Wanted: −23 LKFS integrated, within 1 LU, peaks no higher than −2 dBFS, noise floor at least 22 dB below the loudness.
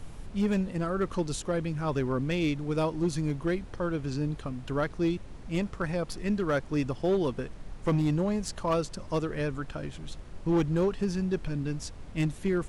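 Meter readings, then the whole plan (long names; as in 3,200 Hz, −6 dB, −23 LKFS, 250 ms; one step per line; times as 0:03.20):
share of clipped samples 1.0%; peaks flattened at −20.5 dBFS; background noise floor −44 dBFS; target noise floor −53 dBFS; integrated loudness −30.5 LKFS; sample peak −20.5 dBFS; target loudness −23.0 LKFS
→ clipped peaks rebuilt −20.5 dBFS
noise reduction from a noise print 9 dB
level +7.5 dB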